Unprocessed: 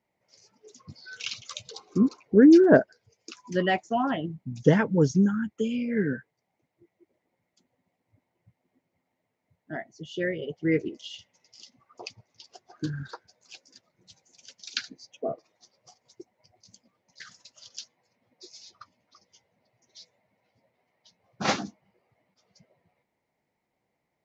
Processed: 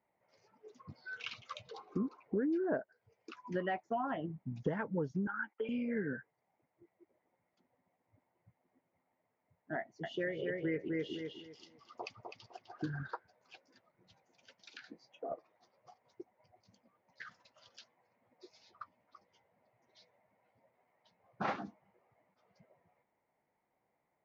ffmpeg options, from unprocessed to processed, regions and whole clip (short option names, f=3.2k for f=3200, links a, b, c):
-filter_complex "[0:a]asettb=1/sr,asplit=3[a][b][c];[a]atrim=end=5.274[d];[b]atrim=start=5.27:end=5.69,asetpts=PTS-STARTPTS,afade=t=in:d=0.004:c=qsin,afade=t=out:st=0.416:d=0.004:c=qsin,bandreject=f=660:w=7.5,agate=range=-16dB:threshold=-51dB:ratio=16:release=100:detection=peak,highpass=f=360:w=0.5412,highpass=f=360:w=1.3066,equalizer=f=450:t=q:w=4:g=-3,equalizer=f=860:t=q:w=4:g=8,equalizer=f=1.5k:t=q:w=4:g=7,equalizer=f=2.2k:t=q:w=4:g=7,lowpass=f=3.5k:w=0.5412,lowpass=f=3.5k:w=1.3066[e];[c]atrim=start=5.686[f];[d][e]acrossfade=d=0.004:c1=hsin:c2=qsin[g];[g][f]acrossfade=d=0.004:c1=qsin:c2=hsin,asettb=1/sr,asplit=3[h][i][j];[h]atrim=end=9.784[k];[i]atrim=start=9.78:end=13.06,asetpts=PTS-STARTPTS,afade=t=in:d=0.004:c=qsin,afade=t=out:st=3.276:d=0.004:c=qsin,highshelf=f=5.2k:g=12,asplit=2[l][m];[m]adelay=254,lowpass=f=3.3k:p=1,volume=-4dB,asplit=2[n][o];[o]adelay=254,lowpass=f=3.3k:p=1,volume=0.26,asplit=2[p][q];[q]adelay=254,lowpass=f=3.3k:p=1,volume=0.26,asplit=2[r][s];[s]adelay=254,lowpass=f=3.3k:p=1,volume=0.26[t];[l][n][p][r][t]amix=inputs=5:normalize=0,atrim=end_sample=144648[u];[j]atrim=start=13.056[v];[k][u]acrossfade=d=0.004:c1=hsin:c2=qsin[w];[w][v]acrossfade=d=0.004:c1=qsin:c2=hsin,asettb=1/sr,asplit=3[x][y][z];[x]atrim=end=14.714[aa];[y]atrim=start=14.71:end=15.32,asetpts=PTS-STARTPTS,afade=t=in:d=0.004:c=qsin,afade=t=out:st=0.606:d=0.004:c=qsin,acompressor=threshold=-37dB:ratio=6:attack=3.2:release=140:knee=1:detection=peak,afreqshift=22,asplit=2[ab][ac];[ac]adelay=23,volume=-10.5dB[ad];[ab][ad]amix=inputs=2:normalize=0,atrim=end_sample=26901[ae];[z]atrim=start=15.316[af];[aa][ae]acrossfade=d=0.004:c1=hsin:c2=qsin[ag];[ag][af]acrossfade=d=0.004:c1=qsin:c2=hsin,lowpass=1.1k,tiltshelf=f=800:g=-8,acompressor=threshold=-35dB:ratio=5,volume=1.5dB"